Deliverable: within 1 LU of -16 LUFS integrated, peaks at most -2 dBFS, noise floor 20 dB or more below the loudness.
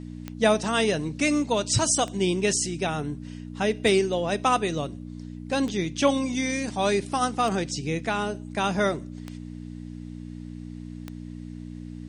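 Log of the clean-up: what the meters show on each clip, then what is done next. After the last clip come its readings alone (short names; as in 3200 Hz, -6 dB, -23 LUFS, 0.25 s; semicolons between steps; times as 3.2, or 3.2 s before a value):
clicks 7; hum 60 Hz; harmonics up to 300 Hz; hum level -36 dBFS; loudness -25.0 LUFS; peak -7.5 dBFS; loudness target -16.0 LUFS
-> de-click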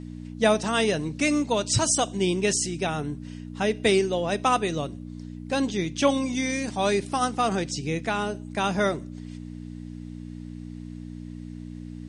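clicks 0; hum 60 Hz; harmonics up to 300 Hz; hum level -36 dBFS
-> de-hum 60 Hz, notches 5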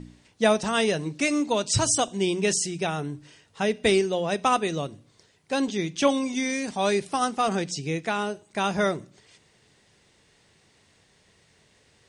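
hum none; loudness -25.5 LUFS; peak -8.0 dBFS; loudness target -16.0 LUFS
-> gain +9.5 dB; limiter -2 dBFS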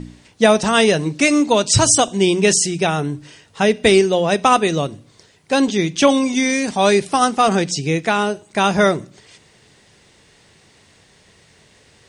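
loudness -16.0 LUFS; peak -2.0 dBFS; noise floor -53 dBFS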